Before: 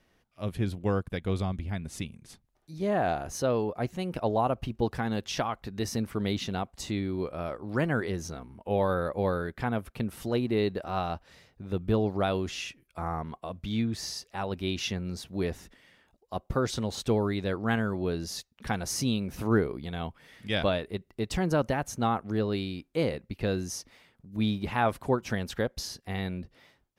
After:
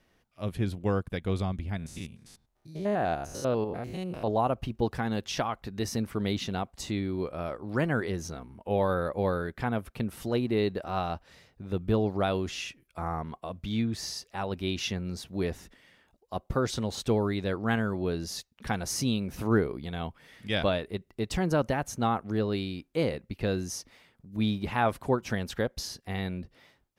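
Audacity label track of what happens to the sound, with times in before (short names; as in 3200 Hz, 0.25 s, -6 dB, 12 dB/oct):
1.770000	4.280000	stepped spectrum every 0.1 s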